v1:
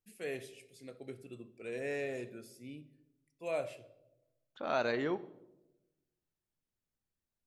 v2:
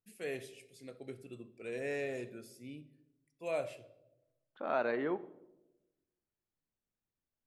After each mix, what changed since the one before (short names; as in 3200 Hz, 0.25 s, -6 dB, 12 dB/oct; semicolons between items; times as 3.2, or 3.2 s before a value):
second voice: add BPF 190–2100 Hz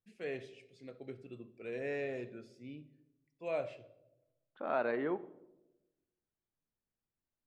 master: add air absorption 140 m